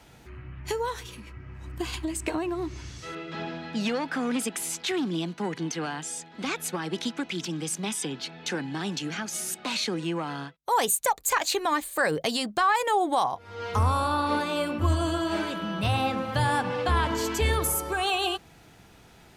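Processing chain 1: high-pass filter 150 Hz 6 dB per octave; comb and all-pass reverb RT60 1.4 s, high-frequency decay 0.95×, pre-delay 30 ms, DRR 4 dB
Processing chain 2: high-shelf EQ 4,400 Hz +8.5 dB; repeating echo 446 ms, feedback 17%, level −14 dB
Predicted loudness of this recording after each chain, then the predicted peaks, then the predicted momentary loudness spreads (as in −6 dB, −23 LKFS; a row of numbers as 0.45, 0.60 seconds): −27.5, −25.5 LKFS; −11.0, −5.0 dBFS; 11, 14 LU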